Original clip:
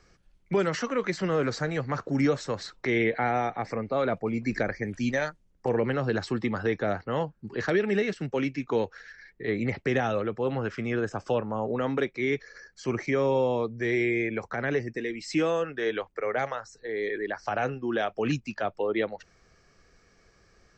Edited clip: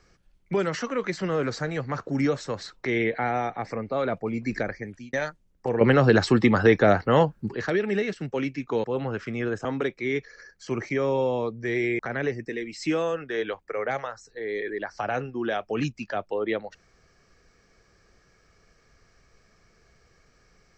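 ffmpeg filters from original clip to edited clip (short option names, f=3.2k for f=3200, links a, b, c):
-filter_complex "[0:a]asplit=7[a][b][c][d][e][f][g];[a]atrim=end=5.13,asetpts=PTS-STARTPTS,afade=t=out:st=4.47:d=0.66:c=qsin[h];[b]atrim=start=5.13:end=5.812,asetpts=PTS-STARTPTS,afade=t=in:d=0.004:c=hsin[i];[c]atrim=start=5.808:end=7.522,asetpts=PTS-STARTPTS,volume=9.5dB[j];[d]atrim=start=7.518:end=8.842[k];[e]atrim=start=10.348:end=11.162[l];[f]atrim=start=11.818:end=14.162[m];[g]atrim=start=14.468[n];[h][i]concat=n=2:v=0:a=1[o];[o][j]acrossfade=d=0.004:c1=hsin:c2=hsin[p];[p][k]acrossfade=d=0.004:c1=hsin:c2=hsin[q];[q][l]acrossfade=d=0.004:c1=hsin:c2=hsin[r];[r][m]acrossfade=d=0.004:c1=hsin:c2=hsin[s];[s][n]acrossfade=d=0.004:c1=hsin:c2=hsin"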